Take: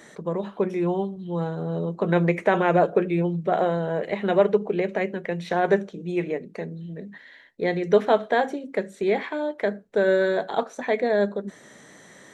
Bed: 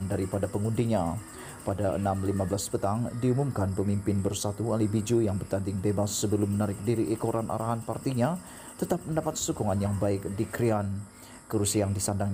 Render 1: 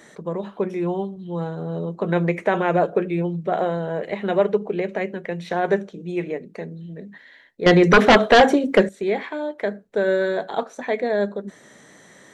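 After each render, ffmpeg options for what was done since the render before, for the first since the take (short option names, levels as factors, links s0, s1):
-filter_complex "[0:a]asettb=1/sr,asplit=3[s0][s1][s2];[s0]atrim=end=7.664[s3];[s1]atrim=start=7.66:end=8.89,asetpts=PTS-STARTPTS,afade=t=in:d=0.004:c=qsin,afade=t=out:st=1.226:d=0.004:c=qsin,aeval=exprs='0.473*sin(PI/2*3.16*val(0)/0.473)':c=same[s4];[s2]atrim=start=8.886[s5];[s3][s4]acrossfade=d=0.004:c1=hsin:c2=qsin[s6];[s6][s5]acrossfade=d=0.004:c1=qsin:c2=hsin"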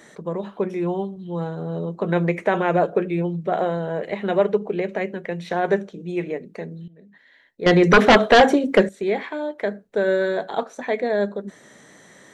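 -filter_complex "[0:a]asplit=2[s0][s1];[s0]atrim=end=6.88,asetpts=PTS-STARTPTS,afade=t=out:st=6.876:d=0.004:c=hsin:silence=0.133352[s2];[s1]atrim=start=6.88,asetpts=PTS-STARTPTS,afade=t=in:d=1.03:silence=0.133352[s3];[s2][s3]concat=n=2:v=0:a=1"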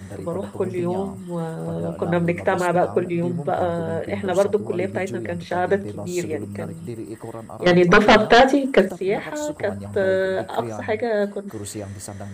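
-filter_complex "[1:a]volume=0.531[s0];[0:a][s0]amix=inputs=2:normalize=0"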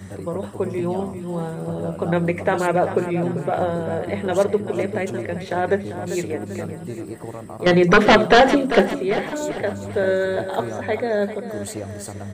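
-af "aecho=1:1:393|786|1179|1572|1965:0.266|0.125|0.0588|0.0276|0.013"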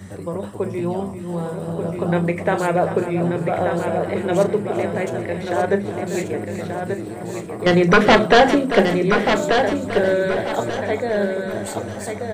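-filter_complex "[0:a]asplit=2[s0][s1];[s1]adelay=35,volume=0.2[s2];[s0][s2]amix=inputs=2:normalize=0,asplit=2[s3][s4];[s4]aecho=0:1:1185|2370|3555|4740:0.501|0.145|0.0421|0.0122[s5];[s3][s5]amix=inputs=2:normalize=0"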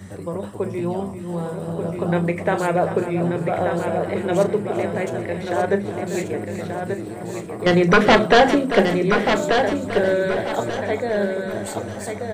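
-af "volume=0.891"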